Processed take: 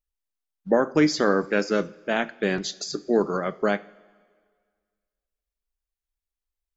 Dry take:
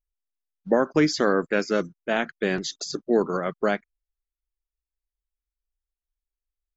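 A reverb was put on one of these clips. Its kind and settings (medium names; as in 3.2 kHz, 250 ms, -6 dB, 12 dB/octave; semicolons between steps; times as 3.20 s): two-slope reverb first 0.38 s, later 1.8 s, from -16 dB, DRR 13 dB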